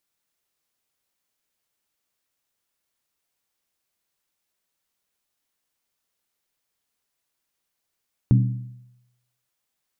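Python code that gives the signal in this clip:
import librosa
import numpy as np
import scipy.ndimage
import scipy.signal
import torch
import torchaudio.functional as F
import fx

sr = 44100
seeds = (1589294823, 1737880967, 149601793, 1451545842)

y = fx.strike_skin(sr, length_s=1.18, level_db=-11.0, hz=123.0, decay_s=0.88, tilt_db=6.5, modes=5)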